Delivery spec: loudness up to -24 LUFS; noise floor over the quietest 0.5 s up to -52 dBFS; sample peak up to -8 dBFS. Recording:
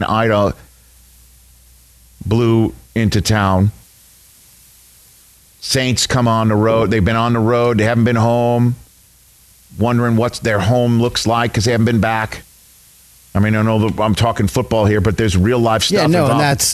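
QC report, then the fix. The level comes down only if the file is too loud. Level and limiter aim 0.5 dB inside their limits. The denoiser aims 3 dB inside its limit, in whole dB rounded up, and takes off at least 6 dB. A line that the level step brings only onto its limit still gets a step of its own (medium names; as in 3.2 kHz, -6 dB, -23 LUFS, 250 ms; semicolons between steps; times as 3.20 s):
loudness -15.0 LUFS: fail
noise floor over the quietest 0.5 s -48 dBFS: fail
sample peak -5.0 dBFS: fail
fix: trim -9.5 dB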